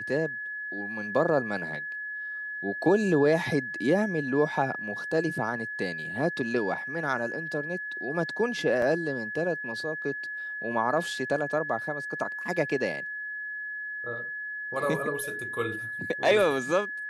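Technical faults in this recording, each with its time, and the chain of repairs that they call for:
whistle 1,700 Hz −33 dBFS
0:08.82: drop-out 2.4 ms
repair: notch filter 1,700 Hz, Q 30
repair the gap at 0:08.82, 2.4 ms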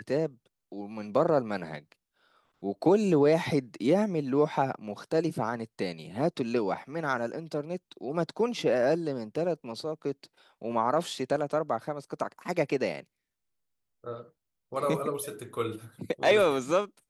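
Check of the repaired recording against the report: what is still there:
none of them is left

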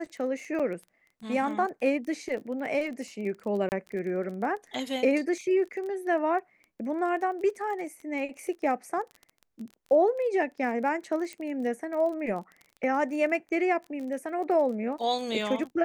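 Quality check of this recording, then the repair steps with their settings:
surface crackle 24 per second −37 dBFS
0:00.59–0:00.60: drop-out 6.2 ms
0:03.69–0:03.72: drop-out 29 ms
0:11.33: click −25 dBFS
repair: click removal
repair the gap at 0:00.59, 6.2 ms
repair the gap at 0:03.69, 29 ms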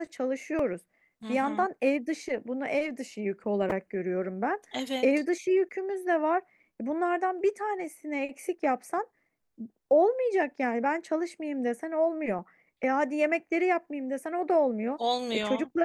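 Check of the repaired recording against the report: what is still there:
none of them is left

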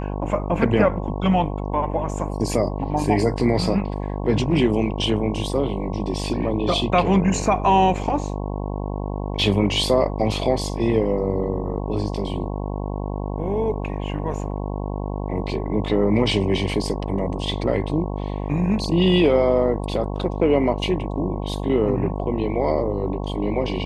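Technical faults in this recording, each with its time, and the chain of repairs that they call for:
mains buzz 50 Hz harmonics 22 −27 dBFS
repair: hum removal 50 Hz, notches 22

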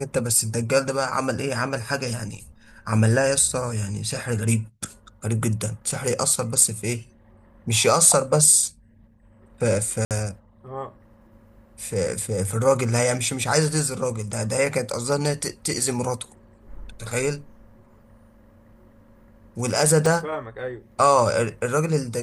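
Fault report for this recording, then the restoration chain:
0:10.05–0:10.11: drop-out 58 ms
0:20.06: drop-out 2.3 ms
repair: repair the gap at 0:10.05, 58 ms
repair the gap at 0:20.06, 2.3 ms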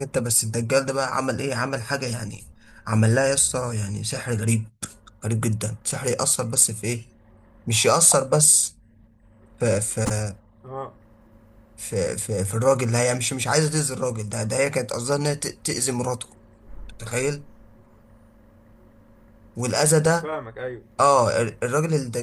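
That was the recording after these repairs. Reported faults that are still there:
none of them is left

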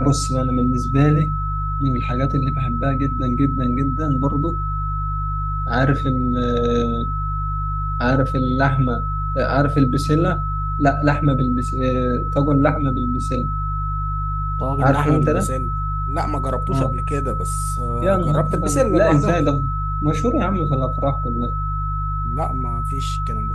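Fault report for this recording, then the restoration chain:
mains hum 50 Hz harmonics 3 −24 dBFS
whistle 1,300 Hz −25 dBFS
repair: notch filter 1,300 Hz, Q 30
hum removal 50 Hz, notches 3

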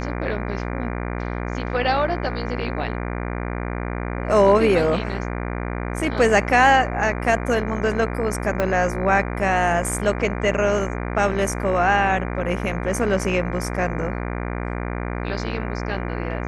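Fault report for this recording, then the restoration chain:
mains buzz 60 Hz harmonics 40 −27 dBFS
0:08.60: click −9 dBFS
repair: click removal
hum removal 60 Hz, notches 40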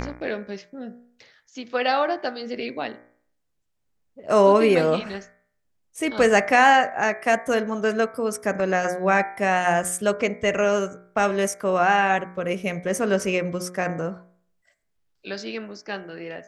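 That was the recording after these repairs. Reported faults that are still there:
0:08.60: click

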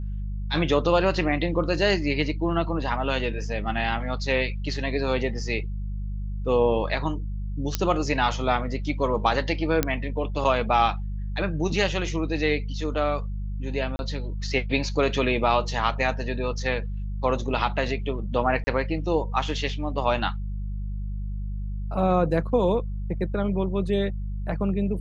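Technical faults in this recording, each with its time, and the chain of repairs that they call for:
mains hum 50 Hz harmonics 4 −30 dBFS
0:07.75: click −7 dBFS
0:09.83: click −6 dBFS
0:13.96–0:13.99: drop-out 31 ms
0:18.64–0:18.67: drop-out 30 ms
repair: click removal
hum removal 50 Hz, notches 4
repair the gap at 0:13.96, 31 ms
repair the gap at 0:18.64, 30 ms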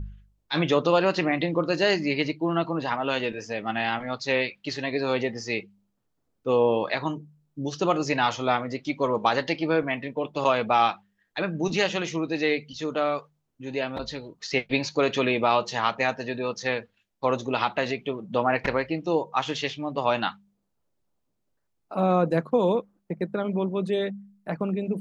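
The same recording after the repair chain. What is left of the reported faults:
none of them is left

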